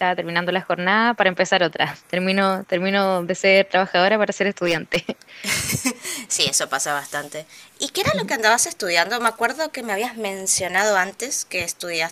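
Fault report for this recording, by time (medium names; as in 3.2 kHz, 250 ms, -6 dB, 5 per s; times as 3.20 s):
4.64–5.11 s: clipped -13 dBFS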